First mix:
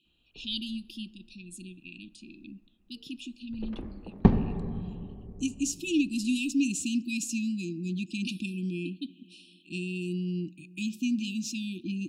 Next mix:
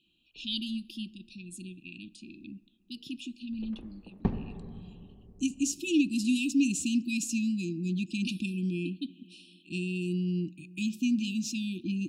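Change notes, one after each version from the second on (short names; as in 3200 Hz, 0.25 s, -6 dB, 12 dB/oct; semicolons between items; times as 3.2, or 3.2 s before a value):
speech: add low shelf 160 Hz +4 dB; background -9.5 dB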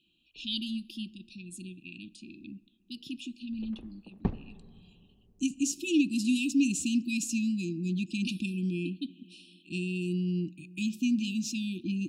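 background: send -11.0 dB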